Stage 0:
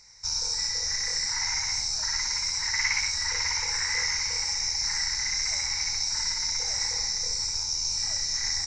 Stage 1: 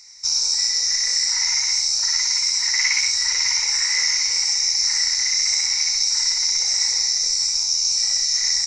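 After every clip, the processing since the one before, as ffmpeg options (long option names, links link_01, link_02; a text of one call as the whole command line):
ffmpeg -i in.wav -af "tiltshelf=frequency=1100:gain=-9.5,bandreject=frequency=1600:width=6.8" out.wav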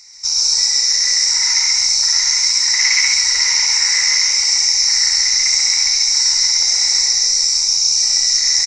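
ffmpeg -i in.wav -af "aecho=1:1:134.1|215.7:0.891|0.282,volume=3dB" out.wav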